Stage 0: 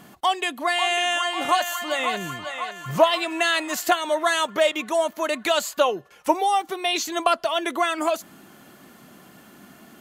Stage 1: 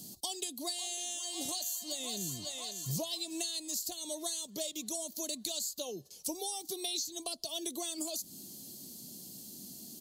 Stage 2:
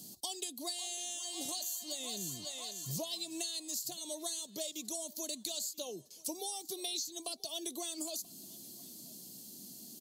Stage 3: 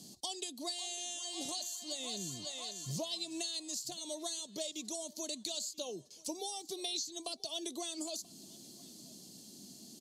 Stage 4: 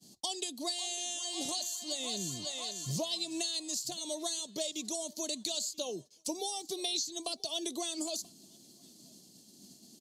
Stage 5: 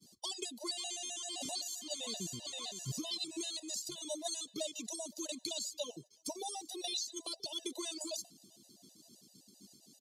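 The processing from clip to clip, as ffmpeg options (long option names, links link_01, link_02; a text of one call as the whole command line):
ffmpeg -i in.wav -filter_complex "[0:a]firequalizer=gain_entry='entry(240,0);entry(1400,-29);entry(4300,13)':delay=0.05:min_phase=1,acrossover=split=130[link_01][link_02];[link_02]acompressor=threshold=-30dB:ratio=10[link_03];[link_01][link_03]amix=inputs=2:normalize=0,volume=-4dB" out.wav
ffmpeg -i in.wav -af "lowshelf=frequency=88:gain=-10,aecho=1:1:983:0.0668,volume=-2dB" out.wav
ffmpeg -i in.wav -af "lowpass=7500,volume=1dB" out.wav
ffmpeg -i in.wav -af "agate=range=-33dB:threshold=-46dB:ratio=3:detection=peak,volume=4dB" out.wav
ffmpeg -i in.wav -af "afftfilt=real='re*gt(sin(2*PI*7.7*pts/sr)*(1-2*mod(floor(b*sr/1024/510),2)),0)':imag='im*gt(sin(2*PI*7.7*pts/sr)*(1-2*mod(floor(b*sr/1024/510),2)),0)':win_size=1024:overlap=0.75,volume=-1dB" out.wav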